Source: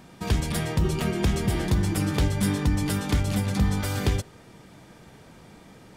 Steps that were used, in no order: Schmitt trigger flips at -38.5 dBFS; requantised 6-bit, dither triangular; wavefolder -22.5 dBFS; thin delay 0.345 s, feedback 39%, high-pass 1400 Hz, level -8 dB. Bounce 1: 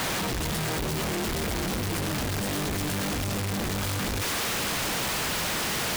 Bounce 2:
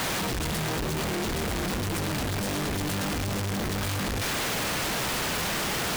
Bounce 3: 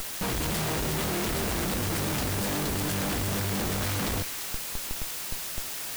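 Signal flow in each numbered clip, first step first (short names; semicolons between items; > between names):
wavefolder > requantised > thin delay > Schmitt trigger; wavefolder > thin delay > requantised > Schmitt trigger; wavefolder > Schmitt trigger > requantised > thin delay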